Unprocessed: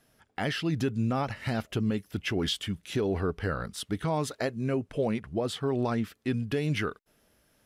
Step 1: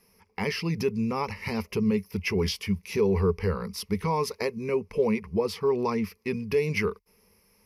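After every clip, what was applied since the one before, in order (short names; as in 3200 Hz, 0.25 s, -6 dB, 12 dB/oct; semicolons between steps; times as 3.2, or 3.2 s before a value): ripple EQ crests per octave 0.84, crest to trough 16 dB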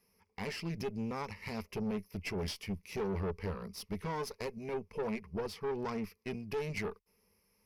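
tube stage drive 25 dB, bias 0.7; gain -6 dB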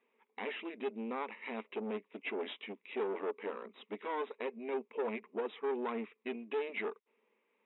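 brick-wall FIR band-pass 220–3900 Hz; gain +1 dB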